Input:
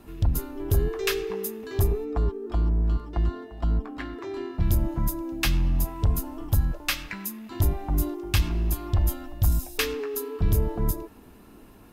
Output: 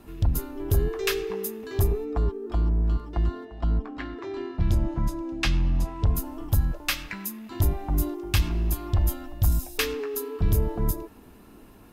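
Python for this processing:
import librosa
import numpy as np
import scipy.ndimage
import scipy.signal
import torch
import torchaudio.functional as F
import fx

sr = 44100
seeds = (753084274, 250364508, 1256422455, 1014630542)

y = fx.lowpass(x, sr, hz=6100.0, slope=12, at=(3.45, 6.15))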